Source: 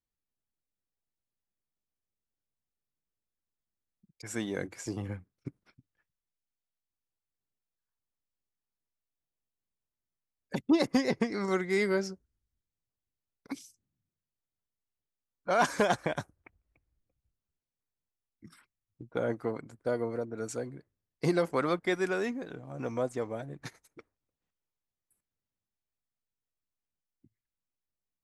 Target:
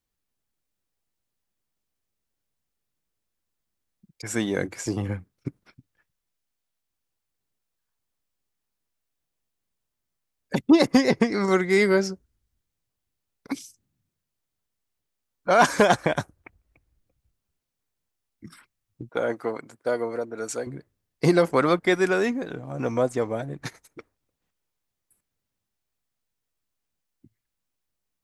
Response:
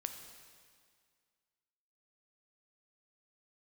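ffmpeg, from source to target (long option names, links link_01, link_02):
-filter_complex "[0:a]asettb=1/sr,asplit=3[link_01][link_02][link_03];[link_01]atrim=end=19.094[link_04];[link_02]atrim=start=19.09:end=20.67,asetpts=PTS-STARTPTS,afade=type=in:duration=0.004:curve=qsin,afade=type=out:start_time=1.576:duration=0.004:curve=qsin,highpass=frequency=500:poles=1[link_05];[link_03]atrim=start=20.666[link_06];[link_04][link_05]acrossfade=duration=0.004:curve1=hsin:curve2=qsin[link_07];[link_07][link_06]acrossfade=duration=0.004:curve1=qsin:curve2=hsin,volume=8.5dB"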